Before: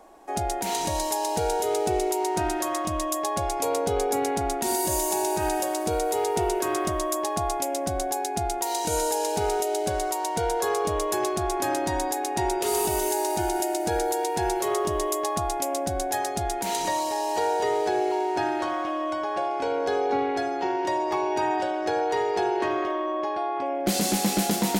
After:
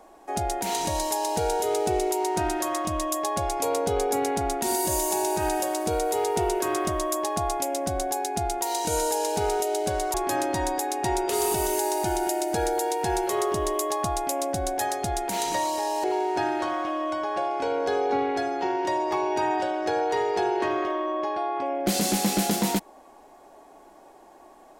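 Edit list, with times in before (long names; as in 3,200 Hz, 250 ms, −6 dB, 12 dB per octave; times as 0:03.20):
0:10.14–0:11.47: remove
0:17.37–0:18.04: remove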